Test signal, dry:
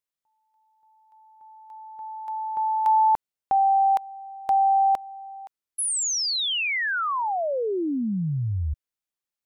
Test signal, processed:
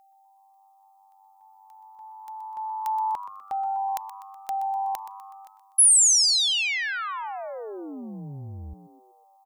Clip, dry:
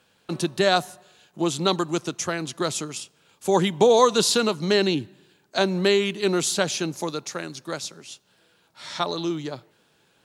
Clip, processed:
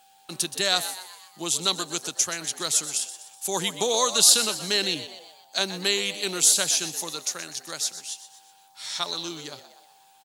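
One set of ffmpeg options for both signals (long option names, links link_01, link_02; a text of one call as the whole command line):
ffmpeg -i in.wav -filter_complex "[0:a]aeval=exprs='val(0)+0.00398*sin(2*PI*780*n/s)':channel_layout=same,asplit=6[link_01][link_02][link_03][link_04][link_05][link_06];[link_02]adelay=124,afreqshift=100,volume=-13dB[link_07];[link_03]adelay=248,afreqshift=200,volume=-19.2dB[link_08];[link_04]adelay=372,afreqshift=300,volume=-25.4dB[link_09];[link_05]adelay=496,afreqshift=400,volume=-31.6dB[link_10];[link_06]adelay=620,afreqshift=500,volume=-37.8dB[link_11];[link_01][link_07][link_08][link_09][link_10][link_11]amix=inputs=6:normalize=0,crystalizer=i=10:c=0,volume=-12dB" out.wav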